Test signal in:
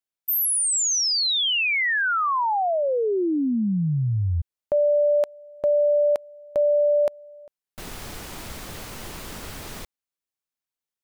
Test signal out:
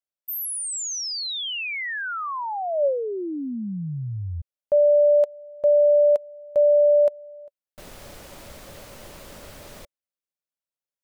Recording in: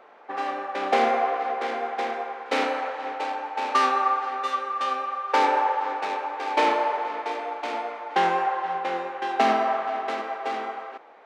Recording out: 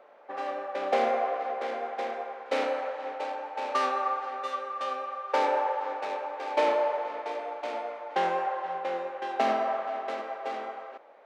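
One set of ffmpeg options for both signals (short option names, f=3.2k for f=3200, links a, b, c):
-af "equalizer=f=570:w=4.7:g=11,volume=-7dB"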